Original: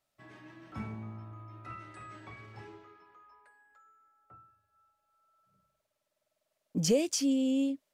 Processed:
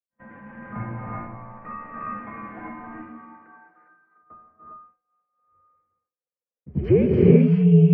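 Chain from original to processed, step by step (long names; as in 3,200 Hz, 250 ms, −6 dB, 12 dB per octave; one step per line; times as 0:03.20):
single-sideband voice off tune −100 Hz 230–2,200 Hz
low-shelf EQ 260 Hz +5.5 dB
echo ahead of the sound 92 ms −17.5 dB
reverb whose tail is shaped and stops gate 430 ms rising, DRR −3.5 dB
downward expander −56 dBFS
level +7.5 dB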